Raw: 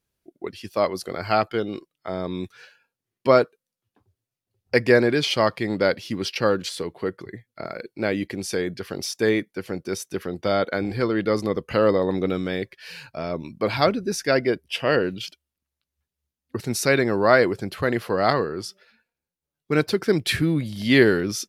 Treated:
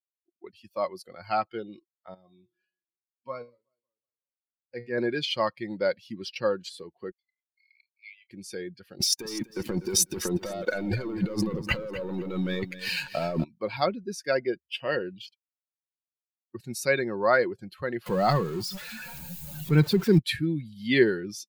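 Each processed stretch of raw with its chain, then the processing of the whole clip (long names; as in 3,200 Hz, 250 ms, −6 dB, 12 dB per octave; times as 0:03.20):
0:02.14–0:04.98: high-shelf EQ 3,800 Hz −4.5 dB + tuned comb filter 120 Hz, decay 0.42 s, mix 80% + feedback echo with a swinging delay time 185 ms, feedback 50%, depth 186 cents, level −21 dB
0:07.11–0:08.31: linear-phase brick-wall high-pass 2,000 Hz + high-frequency loss of the air 170 metres + double-tracking delay 29 ms −11 dB
0:09.00–0:13.44: leveller curve on the samples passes 3 + compressor whose output falls as the input rises −22 dBFS + feedback echo at a low word length 248 ms, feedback 35%, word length 8 bits, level −9 dB
0:18.06–0:20.19: converter with a step at zero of −23.5 dBFS + parametric band 160 Hz +9 dB 0.85 octaves
whole clip: spectral dynamics exaggerated over time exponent 1.5; noise reduction from a noise print of the clip's start 9 dB; comb filter 5.5 ms, depth 32%; level −3.5 dB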